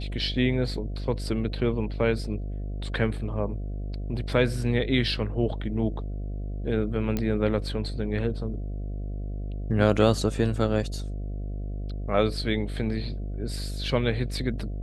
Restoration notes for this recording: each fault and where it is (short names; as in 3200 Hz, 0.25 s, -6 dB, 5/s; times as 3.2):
buzz 50 Hz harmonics 14 -32 dBFS
7.17 pop -14 dBFS